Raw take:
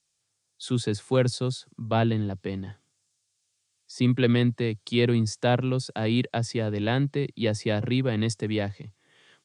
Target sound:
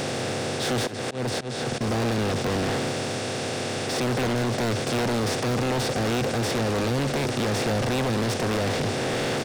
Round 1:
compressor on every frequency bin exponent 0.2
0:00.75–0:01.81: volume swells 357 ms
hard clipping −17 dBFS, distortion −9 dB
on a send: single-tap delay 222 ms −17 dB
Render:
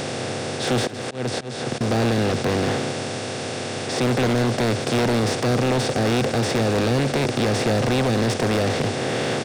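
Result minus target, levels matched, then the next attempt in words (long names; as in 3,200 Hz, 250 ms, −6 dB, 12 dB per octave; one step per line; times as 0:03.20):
hard clipping: distortion −4 dB
compressor on every frequency bin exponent 0.2
0:00.75–0:01.81: volume swells 357 ms
hard clipping −23 dBFS, distortion −5 dB
on a send: single-tap delay 222 ms −17 dB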